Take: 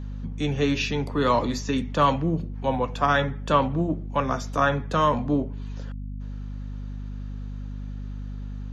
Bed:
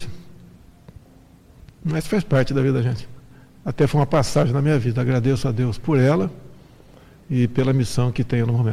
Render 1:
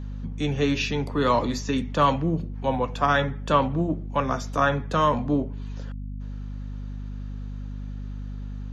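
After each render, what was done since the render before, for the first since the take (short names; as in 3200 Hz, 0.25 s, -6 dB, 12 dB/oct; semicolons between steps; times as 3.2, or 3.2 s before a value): nothing audible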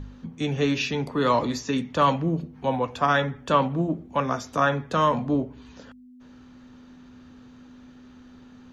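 de-hum 50 Hz, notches 4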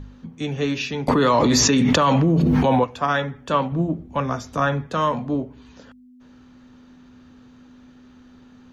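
1.08–2.84 fast leveller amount 100%; 3.72–4.87 low shelf 120 Hz +12 dB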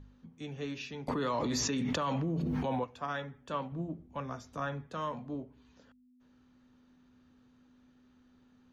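gain -15.5 dB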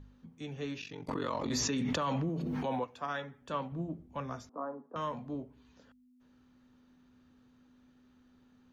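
0.8–1.51 ring modulator 23 Hz; 2.29–3.42 HPF 180 Hz 6 dB/oct; 4.49–4.96 Chebyshev band-pass 240–1100 Hz, order 3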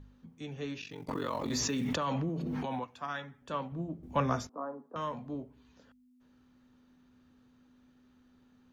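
0.88–1.95 short-mantissa float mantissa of 4-bit; 2.65–3.42 bell 470 Hz -7 dB 0.79 oct; 4.03–4.47 gain +10 dB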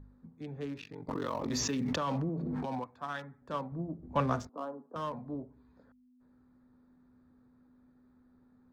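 Wiener smoothing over 15 samples; notch 7100 Hz, Q 23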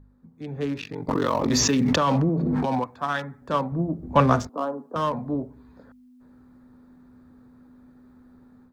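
AGC gain up to 12 dB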